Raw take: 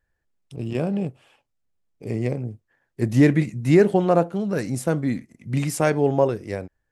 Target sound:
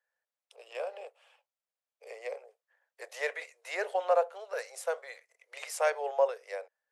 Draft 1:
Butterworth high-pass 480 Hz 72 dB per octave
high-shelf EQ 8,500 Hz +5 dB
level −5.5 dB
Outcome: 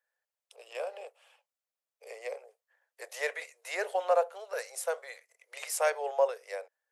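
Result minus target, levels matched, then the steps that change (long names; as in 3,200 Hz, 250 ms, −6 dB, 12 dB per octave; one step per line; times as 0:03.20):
8,000 Hz band +5.0 dB
change: high-shelf EQ 8,500 Hz −6.5 dB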